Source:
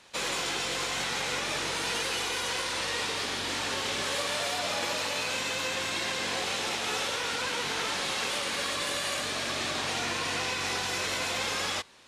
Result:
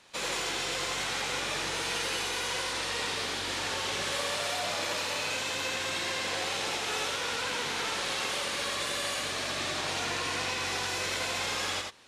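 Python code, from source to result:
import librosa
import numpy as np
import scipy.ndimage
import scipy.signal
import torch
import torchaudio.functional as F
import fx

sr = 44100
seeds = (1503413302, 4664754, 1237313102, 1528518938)

y = x + 10.0 ** (-4.0 / 20.0) * np.pad(x, (int(84 * sr / 1000.0), 0))[:len(x)]
y = y * librosa.db_to_amplitude(-2.5)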